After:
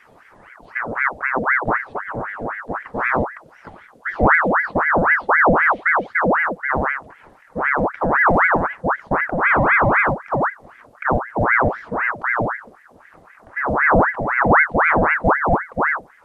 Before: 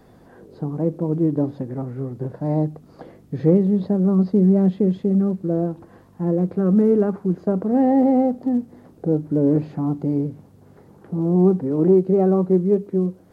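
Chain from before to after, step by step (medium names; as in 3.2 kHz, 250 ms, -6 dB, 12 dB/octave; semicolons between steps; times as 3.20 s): tape speed -18%; ring modulator with a swept carrier 1.1 kHz, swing 70%, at 3.9 Hz; trim +3.5 dB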